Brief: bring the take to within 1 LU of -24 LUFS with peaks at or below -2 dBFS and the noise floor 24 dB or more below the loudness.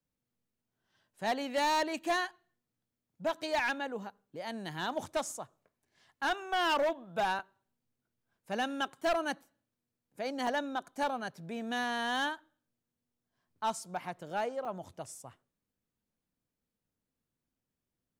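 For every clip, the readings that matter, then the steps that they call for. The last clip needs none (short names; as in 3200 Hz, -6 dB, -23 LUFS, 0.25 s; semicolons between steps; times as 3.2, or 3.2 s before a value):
clipped 1.1%; flat tops at -25.5 dBFS; dropouts 3; longest dropout 2.9 ms; loudness -34.5 LUFS; peak -25.5 dBFS; loudness target -24.0 LUFS
-> clip repair -25.5 dBFS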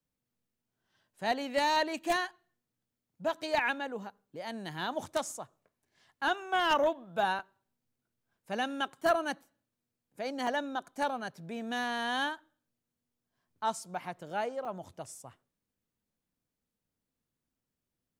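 clipped 0.0%; dropouts 3; longest dropout 2.9 ms
-> interpolate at 7.39/10.47/14.65, 2.9 ms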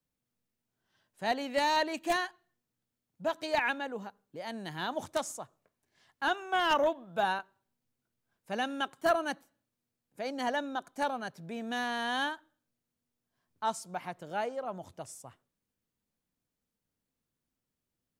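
dropouts 0; loudness -33.0 LUFS; peak -16.5 dBFS; loudness target -24.0 LUFS
-> gain +9 dB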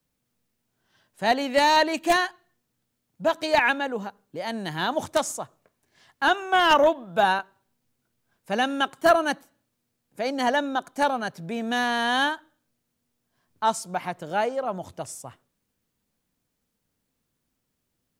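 loudness -24.0 LUFS; peak -7.5 dBFS; noise floor -78 dBFS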